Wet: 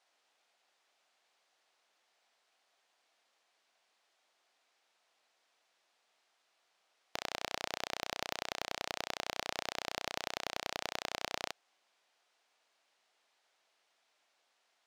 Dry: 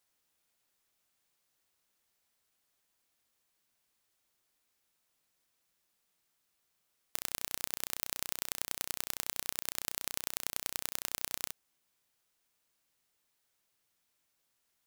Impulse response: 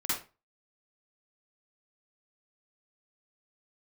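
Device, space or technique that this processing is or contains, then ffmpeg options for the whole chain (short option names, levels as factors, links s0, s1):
intercom: -af "highpass=450,lowpass=4700,equalizer=f=710:t=o:w=0.54:g=6,asoftclip=type=tanh:threshold=0.0531,volume=2.51"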